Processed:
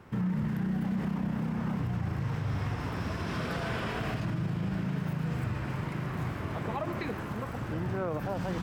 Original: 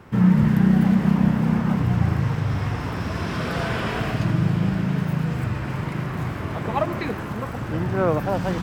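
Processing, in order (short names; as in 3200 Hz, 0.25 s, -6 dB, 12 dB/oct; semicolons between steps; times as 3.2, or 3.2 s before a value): limiter -17.5 dBFS, peak gain reduction 10 dB; gain -6.5 dB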